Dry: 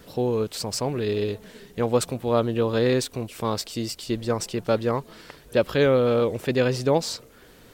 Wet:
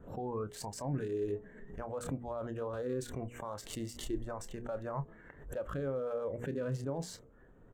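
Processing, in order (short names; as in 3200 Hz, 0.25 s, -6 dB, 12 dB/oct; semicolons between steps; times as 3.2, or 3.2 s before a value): Wiener smoothing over 9 samples; spectral noise reduction 14 dB; reverse; compressor 6:1, threshold -32 dBFS, peak gain reduction 15 dB; reverse; band shelf 3200 Hz -10 dB; limiter -32.5 dBFS, peak gain reduction 11 dB; tilt -2 dB/oct; notches 60/120/180/240/300/360/420/480 Hz; doubler 29 ms -13 dB; backwards sustainer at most 96 dB/s; gain +1 dB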